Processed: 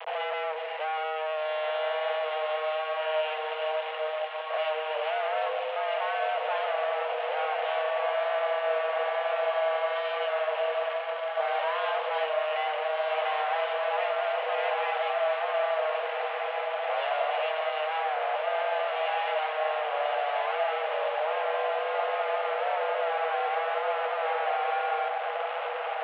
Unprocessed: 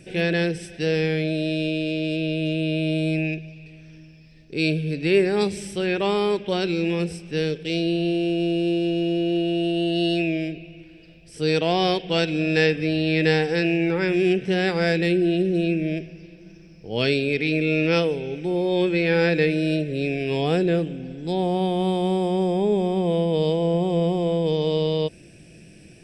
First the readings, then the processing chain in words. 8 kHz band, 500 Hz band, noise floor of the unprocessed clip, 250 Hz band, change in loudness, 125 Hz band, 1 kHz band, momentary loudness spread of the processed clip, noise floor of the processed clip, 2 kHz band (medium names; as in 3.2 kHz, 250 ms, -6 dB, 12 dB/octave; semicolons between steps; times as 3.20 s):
no reading, -5.0 dB, -48 dBFS, under -40 dB, -6.0 dB, under -40 dB, +5.5 dB, 3 LU, -33 dBFS, -3.5 dB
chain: local Wiener filter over 9 samples; in parallel at +1.5 dB: compression, threshold -31 dBFS, peak gain reduction 16 dB; on the sum: valve stage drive 29 dB, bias 0.35; vibrato 1.1 Hz 33 cents; companded quantiser 2-bit; one-sided clip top -31 dBFS; on a send: echo that smears into a reverb 1684 ms, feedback 61%, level -3.5 dB; on the sum: mistuned SSB +310 Hz 190–2800 Hz; attacks held to a fixed rise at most 370 dB/s